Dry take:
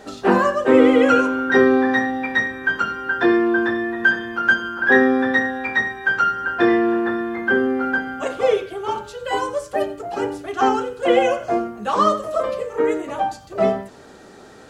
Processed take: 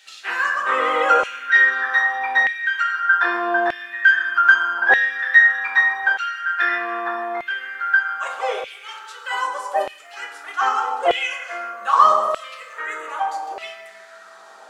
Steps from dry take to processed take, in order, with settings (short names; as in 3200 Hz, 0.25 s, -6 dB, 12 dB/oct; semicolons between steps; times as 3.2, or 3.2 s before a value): 7.53–8.66 low shelf 460 Hz -7.5 dB; reverb RT60 1.8 s, pre-delay 7 ms, DRR 2 dB; LFO high-pass saw down 0.81 Hz 710–2800 Hz; gain -2.5 dB